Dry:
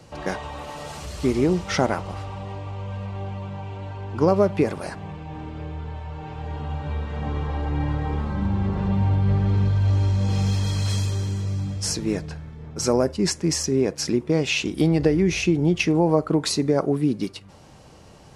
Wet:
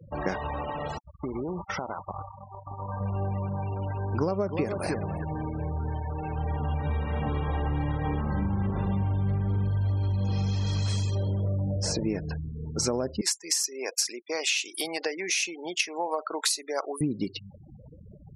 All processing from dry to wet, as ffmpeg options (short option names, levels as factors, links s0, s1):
-filter_complex "[0:a]asettb=1/sr,asplit=3[s0][s1][s2];[s0]atrim=end=0.984[s3];[s1]atrim=start=0.98:end=3.01,asetpts=PTS-STARTPTS,afade=t=in:d=0.004:c=qsin,afade=t=out:st=2.026:d=0.004:c=qsin,agate=range=0.0794:threshold=0.0282:ratio=16:release=100:detection=peak,equalizer=f=1000:t=o:w=1.3:g=12,acompressor=threshold=0.0282:ratio=12:attack=3.2:release=140:knee=1:detection=peak[s4];[s2]atrim=start=3.006[s5];[s3][s4]acrossfade=d=0.004:c1=hsin:c2=qsin[s6];[s6][s5]acrossfade=d=0.004:c1=qsin:c2=hsin,asettb=1/sr,asplit=3[s7][s8][s9];[s7]atrim=end=3.824[s10];[s8]atrim=start=3.82:end=9.43,asetpts=PTS-STARTPTS,afade=t=in:d=0.004:c=qsin,afade=t=out:st=5.606:d=0.004:c=qsin,highshelf=f=3600:g=6,aecho=1:1:304|608:0.299|0.0478,atrim=end_sample=247401[s11];[s9]atrim=start=9.426[s12];[s10][s11]acrossfade=d=0.004:c1=hsin:c2=qsin[s13];[s13][s12]acrossfade=d=0.004:c1=qsin:c2=hsin,asettb=1/sr,asplit=3[s14][s15][s16];[s14]atrim=end=11.154[s17];[s15]atrim=start=11.15:end=12.03,asetpts=PTS-STARTPTS,afade=t=in:d=0.004:c=qsin,afade=t=out:st=0.876:d=0.004:c=qsin,lowpass=f=4000:p=1,equalizer=f=570:t=o:w=0.44:g=13[s18];[s16]atrim=start=12.026[s19];[s17][s18]acrossfade=d=0.004:c1=hsin:c2=qsin[s20];[s20][s19]acrossfade=d=0.004:c1=qsin:c2=hsin,asettb=1/sr,asplit=3[s21][s22][s23];[s21]atrim=end=13.214[s24];[s22]atrim=start=13.21:end=17.01,asetpts=PTS-STARTPTS,afade=t=in:d=0.004:c=qsin,afade=t=out:st=3.796:d=0.004:c=qsin,highpass=770,aemphasis=mode=production:type=bsi[s25];[s23]atrim=start=17.006[s26];[s24][s25]acrossfade=d=0.004:c1=hsin:c2=qsin[s27];[s27][s26]acrossfade=d=0.004:c1=qsin:c2=hsin,afftfilt=real='re*gte(hypot(re,im),0.0158)':imag='im*gte(hypot(re,im),0.0158)':win_size=1024:overlap=0.75,acompressor=threshold=0.0447:ratio=6,volume=1.33"